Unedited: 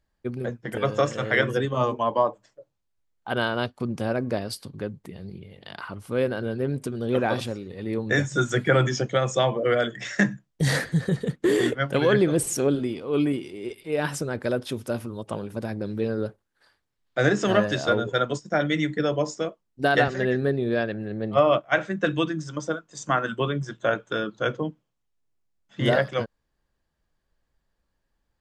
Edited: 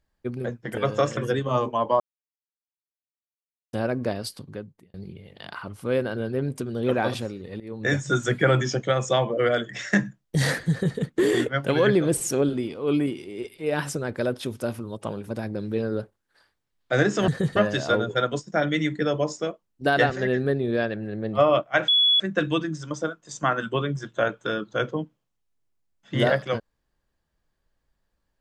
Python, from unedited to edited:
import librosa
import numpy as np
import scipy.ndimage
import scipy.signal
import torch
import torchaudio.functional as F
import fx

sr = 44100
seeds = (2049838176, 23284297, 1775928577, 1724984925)

y = fx.edit(x, sr, fx.cut(start_s=1.17, length_s=0.26),
    fx.silence(start_s=2.26, length_s=1.73),
    fx.fade_out_span(start_s=4.61, length_s=0.59),
    fx.fade_in_from(start_s=7.86, length_s=0.35, floor_db=-19.0),
    fx.duplicate(start_s=10.96, length_s=0.28, to_s=17.54),
    fx.insert_tone(at_s=21.86, length_s=0.32, hz=3390.0, db=-15.5), tone=tone)